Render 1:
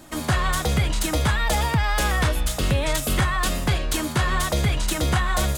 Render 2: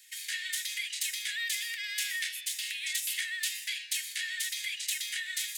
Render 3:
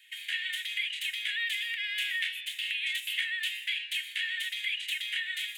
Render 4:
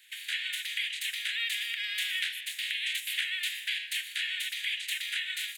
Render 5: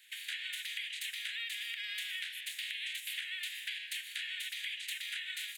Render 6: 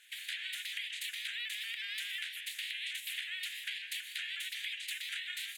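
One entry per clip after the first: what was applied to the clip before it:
Butterworth high-pass 1,800 Hz 72 dB per octave; level −4 dB
high shelf with overshoot 4,000 Hz −10 dB, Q 3
ceiling on every frequency bin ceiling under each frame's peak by 14 dB; repeating echo 147 ms, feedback 58%, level −22 dB
downward compressor, threshold −34 dBFS, peak gain reduction 8 dB; level −2.5 dB
pitch modulation by a square or saw wave saw up 5.5 Hz, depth 100 cents

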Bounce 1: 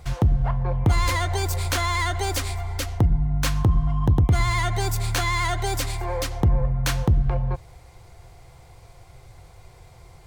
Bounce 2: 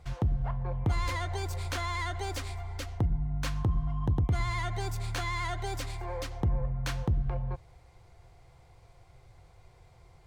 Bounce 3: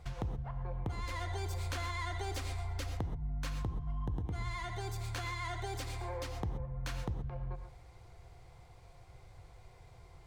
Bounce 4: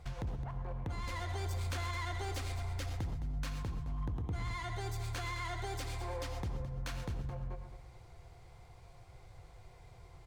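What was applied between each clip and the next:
high-shelf EQ 8,000 Hz −10 dB; level −9 dB
downward compressor 5 to 1, threshold −36 dBFS, peak gain reduction 11.5 dB; reverb whose tail is shaped and stops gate 150 ms rising, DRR 7 dB
hard clipping −33.5 dBFS, distortion −17 dB; repeating echo 214 ms, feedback 30%, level −11.5 dB

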